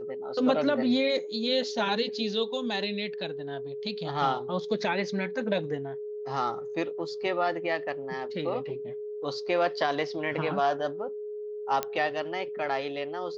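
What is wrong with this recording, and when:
whistle 420 Hz −34 dBFS
0:11.83: click −13 dBFS

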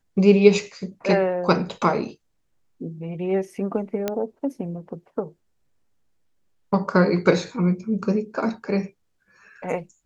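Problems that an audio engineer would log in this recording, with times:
0:04.08: click −10 dBFS

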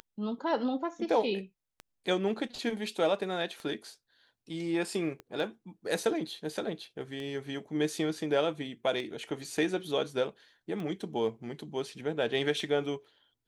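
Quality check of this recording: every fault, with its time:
scratch tick 33 1/3 rpm −27 dBFS
0:05.20: click −29 dBFS

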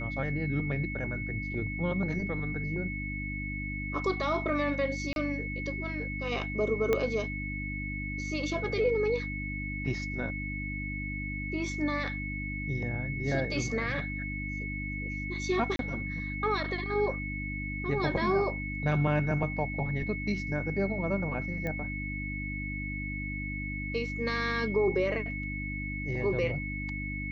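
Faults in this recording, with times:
mains hum 50 Hz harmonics 6 −37 dBFS
whistle 2,200 Hz −37 dBFS
0:05.13–0:05.16: drop-out 31 ms
0:06.93: click −14 dBFS
0:15.76–0:15.79: drop-out 32 ms
0:21.67: click −22 dBFS

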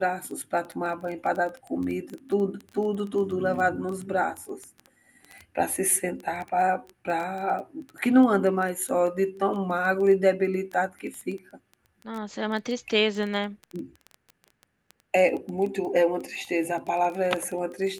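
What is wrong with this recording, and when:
surface crackle 12 per second −30 dBFS

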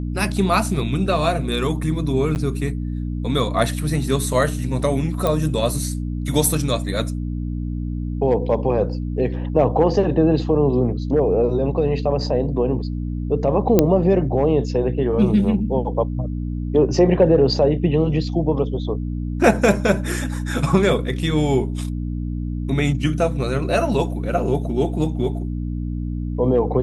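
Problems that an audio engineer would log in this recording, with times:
mains hum 60 Hz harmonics 5 −25 dBFS
0:02.35–0:02.36: drop-out 9.4 ms
0:05.27: click −8 dBFS
0:13.79: click −1 dBFS

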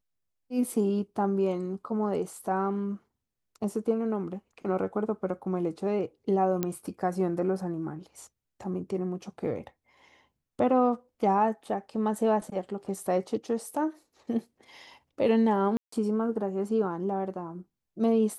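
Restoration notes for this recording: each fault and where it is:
0:06.63: click −14 dBFS
0:15.77–0:15.92: drop-out 154 ms

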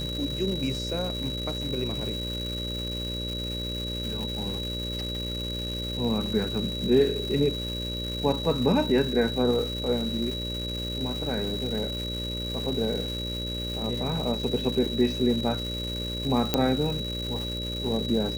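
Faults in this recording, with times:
mains buzz 60 Hz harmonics 10 −34 dBFS
surface crackle 570 per second −33 dBFS
whistle 3,900 Hz −33 dBFS
0:16.54: click −7 dBFS

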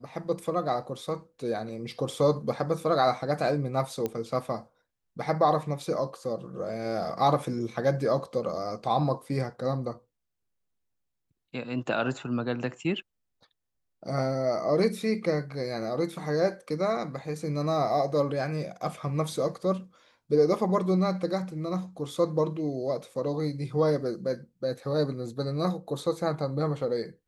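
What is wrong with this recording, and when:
0:04.06: click −17 dBFS

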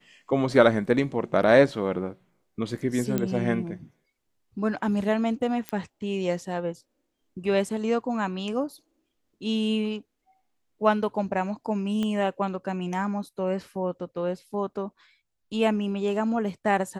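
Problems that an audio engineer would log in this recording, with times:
0:03.18: click −13 dBFS
0:05.69: click −15 dBFS
0:12.03: click −18 dBFS

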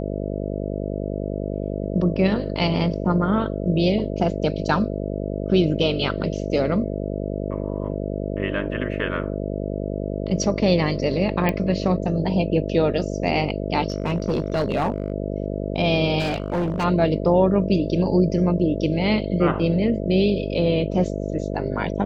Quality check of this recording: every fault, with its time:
mains buzz 50 Hz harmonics 13 −27 dBFS
0:11.49: click −9 dBFS
0:13.88–0:15.12: clipping −17 dBFS
0:16.19–0:16.85: clipping −19.5 dBFS

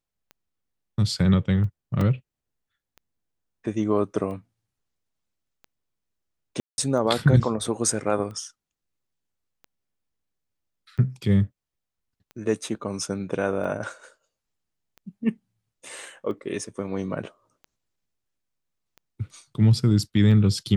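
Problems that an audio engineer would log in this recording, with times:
scratch tick 45 rpm −29 dBFS
0:02.01: drop-out 3 ms
0:06.60–0:06.78: drop-out 180 ms

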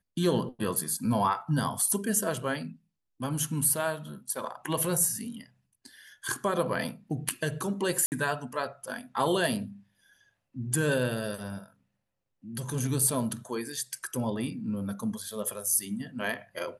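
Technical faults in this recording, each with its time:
0:08.06–0:08.12: drop-out 59 ms

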